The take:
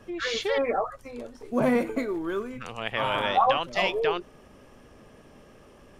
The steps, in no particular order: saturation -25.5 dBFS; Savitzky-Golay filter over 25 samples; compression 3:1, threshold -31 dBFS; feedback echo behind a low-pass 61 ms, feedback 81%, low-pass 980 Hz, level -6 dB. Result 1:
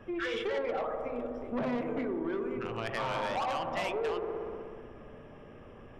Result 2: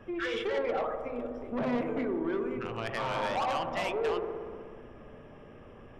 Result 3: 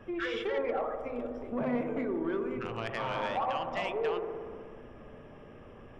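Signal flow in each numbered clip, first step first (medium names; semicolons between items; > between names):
Savitzky-Golay filter > saturation > feedback echo behind a low-pass > compression; Savitzky-Golay filter > saturation > compression > feedback echo behind a low-pass; compression > Savitzky-Golay filter > saturation > feedback echo behind a low-pass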